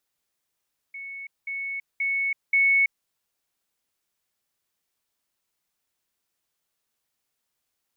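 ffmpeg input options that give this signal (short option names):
-f lavfi -i "aevalsrc='pow(10,(-34.5+6*floor(t/0.53))/20)*sin(2*PI*2210*t)*clip(min(mod(t,0.53),0.33-mod(t,0.53))/0.005,0,1)':d=2.12:s=44100"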